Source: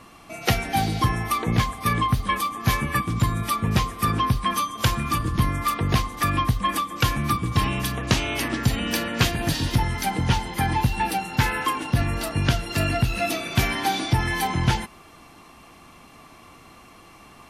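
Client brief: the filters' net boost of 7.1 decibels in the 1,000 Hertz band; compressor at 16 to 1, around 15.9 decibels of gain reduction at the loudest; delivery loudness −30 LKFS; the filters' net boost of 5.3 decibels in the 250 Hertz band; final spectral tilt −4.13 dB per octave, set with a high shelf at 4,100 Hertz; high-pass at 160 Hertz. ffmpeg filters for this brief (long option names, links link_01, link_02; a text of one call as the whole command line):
ffmpeg -i in.wav -af "highpass=160,equalizer=frequency=250:width_type=o:gain=8,equalizer=frequency=1000:width_type=o:gain=7.5,highshelf=frequency=4100:gain=7.5,acompressor=threshold=-29dB:ratio=16,volume=3.5dB" out.wav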